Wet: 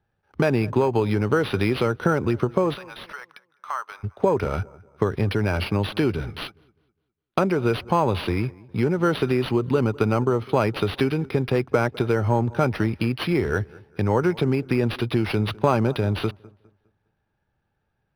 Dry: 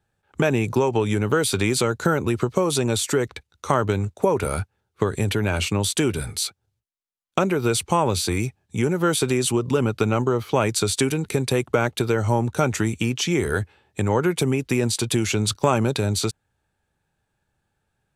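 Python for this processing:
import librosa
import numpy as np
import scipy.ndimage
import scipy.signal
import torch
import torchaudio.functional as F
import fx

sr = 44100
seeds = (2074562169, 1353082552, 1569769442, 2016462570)

p1 = scipy.signal.medfilt(x, 5)
p2 = fx.ladder_highpass(p1, sr, hz=900.0, resonance_pct=35, at=(2.73, 4.03), fade=0.02)
p3 = p2 + fx.echo_wet_lowpass(p2, sr, ms=204, feedback_pct=33, hz=1900.0, wet_db=-22.0, dry=0)
y = np.interp(np.arange(len(p3)), np.arange(len(p3))[::6], p3[::6])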